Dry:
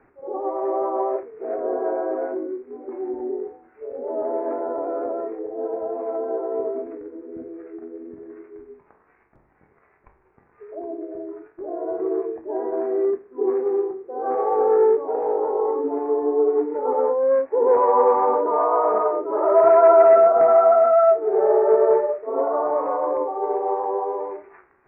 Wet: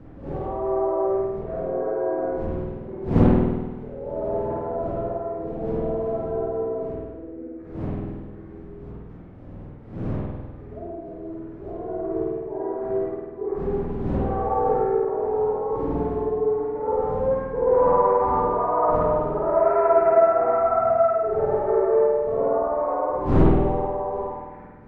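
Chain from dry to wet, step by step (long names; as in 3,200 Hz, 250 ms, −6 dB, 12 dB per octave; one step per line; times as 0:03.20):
wind on the microphone 240 Hz −28 dBFS
spring reverb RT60 1.3 s, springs 49 ms, chirp 60 ms, DRR −4.5 dB
highs frequency-modulated by the lows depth 0.34 ms
level −8 dB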